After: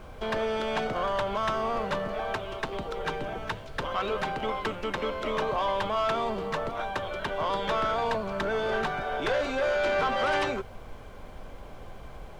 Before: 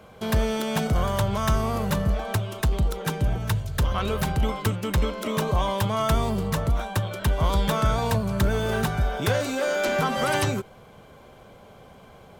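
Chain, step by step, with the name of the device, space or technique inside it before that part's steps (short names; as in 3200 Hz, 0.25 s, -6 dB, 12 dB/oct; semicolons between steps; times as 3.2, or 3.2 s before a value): aircraft cabin announcement (BPF 370–3200 Hz; soft clip -21.5 dBFS, distortion -16 dB; brown noise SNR 12 dB); gain +1.5 dB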